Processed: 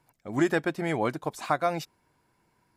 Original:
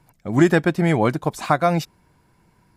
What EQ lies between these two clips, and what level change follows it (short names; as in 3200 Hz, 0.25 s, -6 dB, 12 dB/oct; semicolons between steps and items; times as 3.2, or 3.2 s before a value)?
low shelf 140 Hz -10.5 dB; bell 180 Hz -7 dB 0.22 oct; -7.0 dB